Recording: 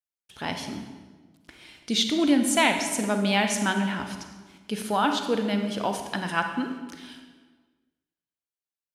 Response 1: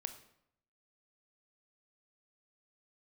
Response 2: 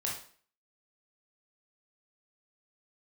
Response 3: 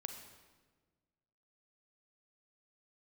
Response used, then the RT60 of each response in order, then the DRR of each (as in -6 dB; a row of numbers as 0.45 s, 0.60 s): 3; 0.75 s, 0.50 s, 1.4 s; 8.5 dB, -3.5 dB, 5.5 dB